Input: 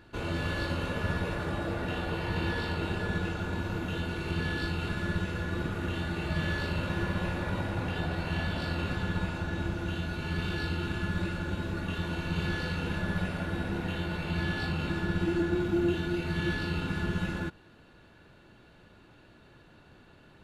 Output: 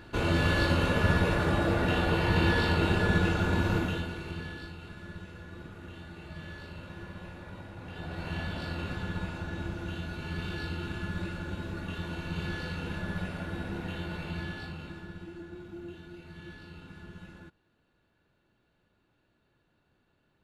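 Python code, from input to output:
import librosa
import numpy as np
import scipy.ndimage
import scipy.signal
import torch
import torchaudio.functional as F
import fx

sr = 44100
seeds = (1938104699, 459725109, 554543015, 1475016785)

y = fx.gain(x, sr, db=fx.line((3.77, 6.0), (4.09, -3.0), (4.79, -12.5), (7.78, -12.5), (8.26, -3.5), (14.22, -3.5), (15.31, -16.0)))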